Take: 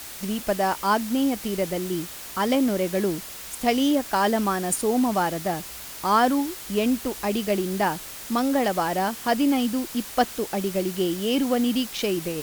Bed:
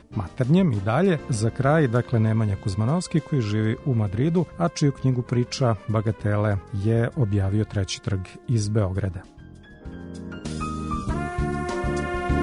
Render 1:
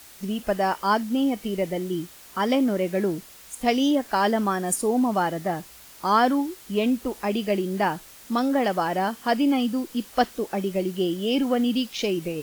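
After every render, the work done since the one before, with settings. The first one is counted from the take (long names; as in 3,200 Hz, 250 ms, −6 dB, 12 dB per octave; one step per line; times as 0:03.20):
noise reduction from a noise print 9 dB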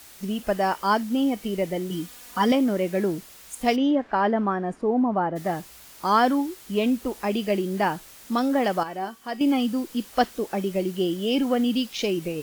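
0:01.90–0:02.52: comb filter 4.1 ms, depth 85%
0:03.75–0:05.35: low-pass filter 2,400 Hz → 1,200 Hz
0:08.83–0:09.41: tuned comb filter 380 Hz, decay 0.19 s, mix 70%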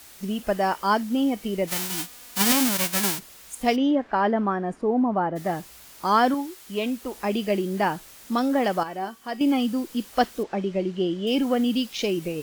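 0:01.67–0:03.18: spectral envelope flattened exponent 0.1
0:06.34–0:07.13: low-shelf EQ 440 Hz −7 dB
0:10.43–0:11.27: high-frequency loss of the air 120 metres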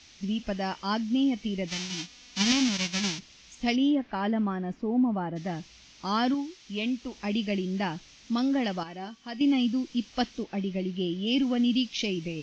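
elliptic low-pass filter 6,100 Hz, stop band 50 dB
flat-topped bell 810 Hz −9 dB 2.5 octaves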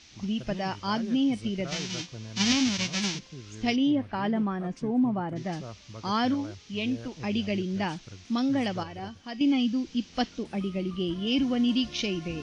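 mix in bed −20.5 dB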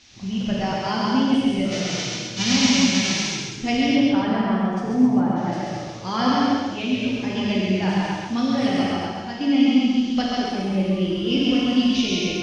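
feedback echo with a high-pass in the loop 135 ms, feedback 42%, high-pass 160 Hz, level −3 dB
reverb whose tail is shaped and stops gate 290 ms flat, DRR −4.5 dB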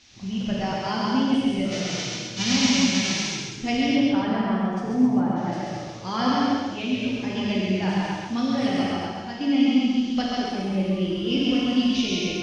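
level −2.5 dB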